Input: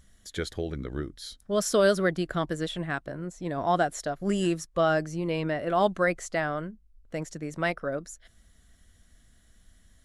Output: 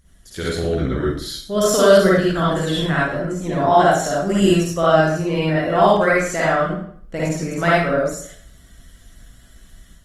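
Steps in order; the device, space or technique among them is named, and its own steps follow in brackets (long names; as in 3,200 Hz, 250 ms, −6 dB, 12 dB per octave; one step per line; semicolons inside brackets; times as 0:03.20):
speakerphone in a meeting room (convolution reverb RT60 0.55 s, pre-delay 46 ms, DRR −7 dB; automatic gain control gain up to 6 dB; Opus 24 kbit/s 48,000 Hz)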